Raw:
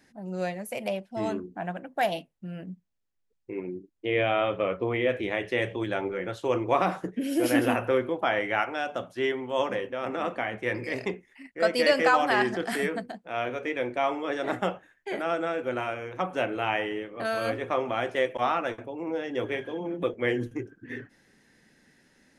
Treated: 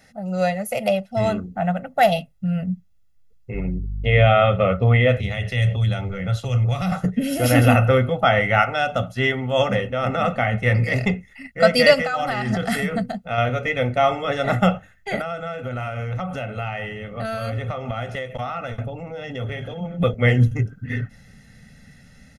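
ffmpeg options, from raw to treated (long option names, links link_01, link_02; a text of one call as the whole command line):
ffmpeg -i in.wav -filter_complex "[0:a]asettb=1/sr,asplit=3[link_01][link_02][link_03];[link_01]atrim=end=3.544[link_04];[link_02]atrim=start=3.54:end=4.28,asetpts=PTS-STARTPTS,afade=type=in:duration=0.004:curve=qsin,afade=type=out:start_time=0.736:duration=0.004:curve=qsin,aeval=exprs='val(0)+0.00355*(sin(2*PI*50*n/s)+sin(2*PI*2*50*n/s)/2+sin(2*PI*3*50*n/s)/3+sin(2*PI*4*50*n/s)/4+sin(2*PI*5*50*n/s)/5)':channel_layout=same[link_05];[link_03]atrim=start=4.276[link_06];[link_04][link_05]acrossfade=duration=0.004:curve1=hsin:curve2=qsin[link_07];[link_07][link_06]acrossfade=duration=0.004:curve1=qsin:curve2=hsin,asettb=1/sr,asplit=3[link_08][link_09][link_10];[link_08]atrim=end=5.174[link_11];[link_09]atrim=start=5.17:end=6.92,asetpts=PTS-STARTPTS,afade=type=in:duration=0.004:curve=qsin,afade=type=out:start_time=1.746:duration=0.004:curve=qsin,acrossover=split=160|3000[link_12][link_13][link_14];[link_13]acompressor=threshold=-36dB:ratio=6:attack=3.2:release=140:knee=2.83:detection=peak[link_15];[link_12][link_15][link_14]amix=inputs=3:normalize=0[link_16];[link_10]atrim=start=6.916[link_17];[link_11][link_16]acrossfade=duration=0.004:curve1=hsin:curve2=qsin[link_18];[link_18][link_17]acrossfade=duration=0.004:curve1=qsin:curve2=hsin,asettb=1/sr,asplit=3[link_19][link_20][link_21];[link_19]atrim=end=11.944[link_22];[link_20]atrim=start=11.94:end=13.38,asetpts=PTS-STARTPTS,afade=type=in:duration=0.004:curve=qsin,afade=type=out:start_time=1.436:duration=0.004:curve=qsin,acompressor=threshold=-27dB:ratio=16:attack=3.2:release=140:knee=1:detection=peak[link_23];[link_21]atrim=start=13.376[link_24];[link_22][link_23]acrossfade=duration=0.004:curve1=hsin:curve2=qsin[link_25];[link_25][link_24]acrossfade=duration=0.004:curve1=qsin:curve2=hsin,asettb=1/sr,asplit=3[link_26][link_27][link_28];[link_26]atrim=end=15.214[link_29];[link_27]atrim=start=15.21:end=20,asetpts=PTS-STARTPTS,afade=type=in:duration=0.004:curve=qsin,afade=type=out:start_time=4.786:duration=0.004:curve=qsin,acompressor=threshold=-35dB:ratio=4:attack=3.2:release=140:knee=1:detection=peak[link_30];[link_28]atrim=start=19.996[link_31];[link_29][link_30]acrossfade=duration=0.004:curve1=hsin:curve2=qsin[link_32];[link_32][link_31]acrossfade=duration=0.004:curve1=qsin:curve2=hsin,aecho=1:1:1.5:0.99,asubboost=boost=4.5:cutoff=220,bandreject=frequency=7900:width=18,volume=6.5dB" out.wav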